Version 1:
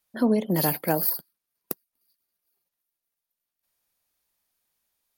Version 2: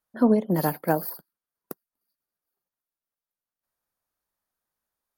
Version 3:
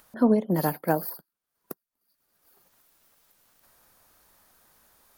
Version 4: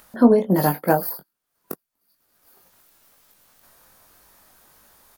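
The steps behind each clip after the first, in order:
high shelf with overshoot 1,900 Hz −7 dB, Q 1.5; expander for the loud parts 1.5 to 1, over −30 dBFS; level +3 dB
upward compression, threshold −39 dBFS; level −1 dB
double-tracking delay 21 ms −6 dB; level +5.5 dB

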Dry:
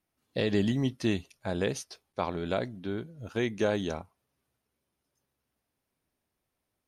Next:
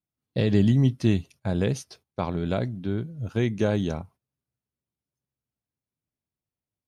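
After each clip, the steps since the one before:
noise gate −55 dBFS, range −15 dB
parametric band 120 Hz +12 dB 2 octaves
notch filter 1,800 Hz, Q 30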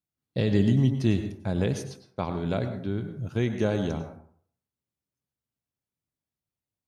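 dense smooth reverb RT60 0.56 s, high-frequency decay 0.5×, pre-delay 85 ms, DRR 8 dB
level −2 dB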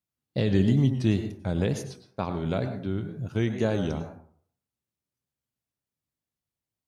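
tape wow and flutter 82 cents

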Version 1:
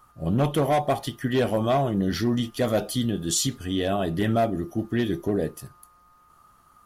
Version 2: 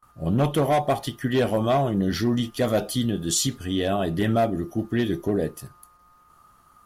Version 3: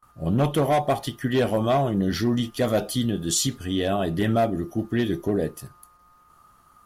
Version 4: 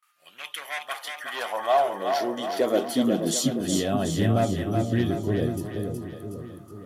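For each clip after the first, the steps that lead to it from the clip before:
noise gate with hold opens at −49 dBFS; level +1 dB
no processing that can be heard
high-pass filter sweep 2,300 Hz → 95 Hz, 0:00.41–0:04.23; echo with a time of its own for lows and highs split 500 Hz, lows 480 ms, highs 369 ms, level −5 dB; level −3.5 dB

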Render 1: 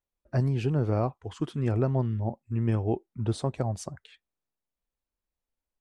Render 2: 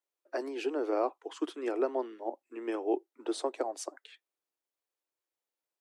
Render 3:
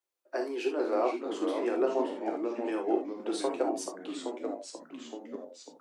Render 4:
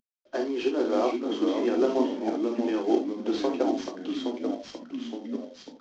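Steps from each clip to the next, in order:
Butterworth high-pass 290 Hz 72 dB per octave
reverb whose tail is shaped and stops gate 90 ms flat, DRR 2 dB; delay with pitch and tempo change per echo 396 ms, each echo −2 semitones, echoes 3, each echo −6 dB
variable-slope delta modulation 32 kbit/s; hollow resonant body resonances 230/3,200 Hz, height 12 dB, ringing for 35 ms; level +1.5 dB

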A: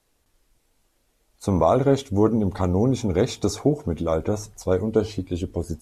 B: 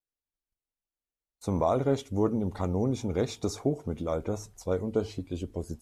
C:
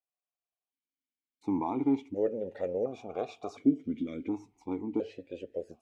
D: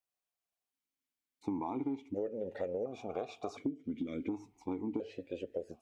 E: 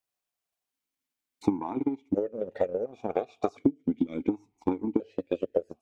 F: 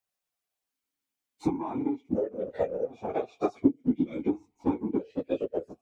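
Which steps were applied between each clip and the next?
noise gate −57 dBFS, range −25 dB; level −7.5 dB
formant filter that steps through the vowels 1.4 Hz; level +9 dB
downward compressor 12 to 1, threshold −34 dBFS, peak gain reduction 16.5 dB; level +1.5 dB
transient designer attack +10 dB, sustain −10 dB; level +3.5 dB
random phases in long frames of 50 ms

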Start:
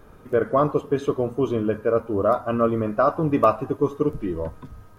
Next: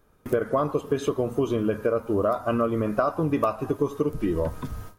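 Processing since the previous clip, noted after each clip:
noise gate with hold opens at −34 dBFS
high-shelf EQ 3,700 Hz +8.5 dB
downward compressor 6 to 1, threshold −28 dBFS, peak gain reduction 15.5 dB
level +7 dB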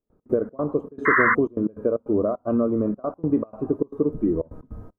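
drawn EQ curve 130 Hz 0 dB, 240 Hz +8 dB, 570 Hz +3 dB, 1,200 Hz −6 dB, 3,100 Hz −24 dB
sound drawn into the spectrogram noise, 0:01.05–0:01.35, 980–2,100 Hz −16 dBFS
gate pattern ".x.xx.xxx.xxxxx" 153 BPM −24 dB
level −2.5 dB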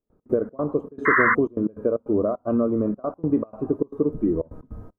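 no processing that can be heard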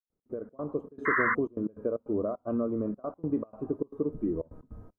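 fade in at the beginning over 0.79 s
level −8 dB

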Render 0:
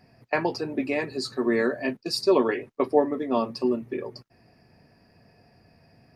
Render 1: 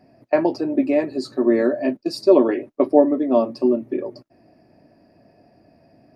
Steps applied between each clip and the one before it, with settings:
hollow resonant body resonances 310/590 Hz, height 15 dB, ringing for 25 ms
level −4 dB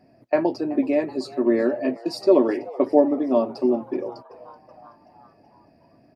echo with shifted repeats 378 ms, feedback 60%, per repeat +120 Hz, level −21 dB
level −2.5 dB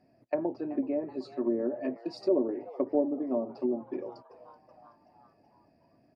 treble cut that deepens with the level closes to 620 Hz, closed at −15.5 dBFS
level −9 dB

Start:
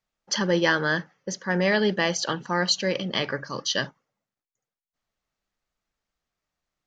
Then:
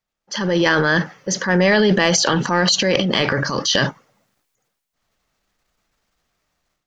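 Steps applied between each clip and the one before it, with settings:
downward compressor, threshold −23 dBFS, peak gain reduction 7 dB
transient designer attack −5 dB, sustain +9 dB
automatic gain control gain up to 13 dB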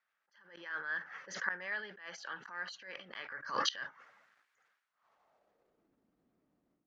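gate with flip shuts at −9 dBFS, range −24 dB
band-pass filter sweep 1,600 Hz → 270 Hz, 0:04.79–0:05.98
level that may rise only so fast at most 110 dB per second
level +7.5 dB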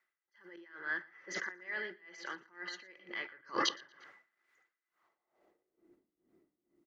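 hollow resonant body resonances 350/2,000 Hz, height 17 dB, ringing for 65 ms
on a send: repeating echo 117 ms, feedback 32%, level −12 dB
on the sum: tremolo with a sine in dB 2.2 Hz, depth 19 dB
level +1.5 dB

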